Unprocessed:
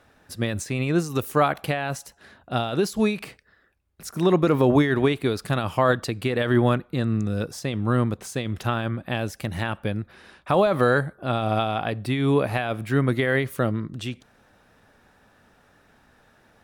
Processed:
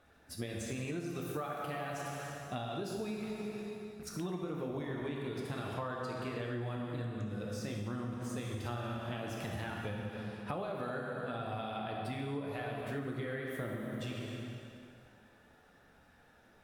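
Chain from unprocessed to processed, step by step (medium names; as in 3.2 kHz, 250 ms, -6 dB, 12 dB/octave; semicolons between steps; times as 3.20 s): coarse spectral quantiser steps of 15 dB; 3.20–4.07 s: tone controls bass +6 dB, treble -11 dB; 8.44–8.97 s: flutter echo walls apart 10 m, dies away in 1.1 s; plate-style reverb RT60 2.3 s, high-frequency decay 0.9×, DRR -1.5 dB; compression 10:1, threshold -27 dBFS, peak gain reduction 16.5 dB; 5.74–6.62 s: treble shelf 9.9 kHz -6.5 dB; trim -8.5 dB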